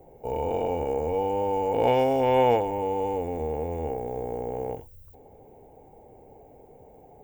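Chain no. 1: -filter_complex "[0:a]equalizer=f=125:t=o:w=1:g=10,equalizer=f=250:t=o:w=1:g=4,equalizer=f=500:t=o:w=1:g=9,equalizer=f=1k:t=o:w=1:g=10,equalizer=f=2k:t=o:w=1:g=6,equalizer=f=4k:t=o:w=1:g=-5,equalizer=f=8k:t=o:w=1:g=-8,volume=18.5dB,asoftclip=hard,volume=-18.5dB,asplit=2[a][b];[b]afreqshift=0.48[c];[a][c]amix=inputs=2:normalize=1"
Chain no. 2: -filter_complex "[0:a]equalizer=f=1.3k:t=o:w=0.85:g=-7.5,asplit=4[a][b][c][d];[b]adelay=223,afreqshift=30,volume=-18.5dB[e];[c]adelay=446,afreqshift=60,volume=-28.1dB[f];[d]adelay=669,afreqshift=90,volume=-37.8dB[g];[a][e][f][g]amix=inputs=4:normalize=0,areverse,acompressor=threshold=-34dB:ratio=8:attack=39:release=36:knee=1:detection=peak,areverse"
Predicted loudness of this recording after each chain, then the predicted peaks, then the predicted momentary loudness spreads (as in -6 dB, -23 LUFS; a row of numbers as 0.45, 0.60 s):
-24.5, -32.5 LUFS; -14.0, -21.5 dBFS; 21, 21 LU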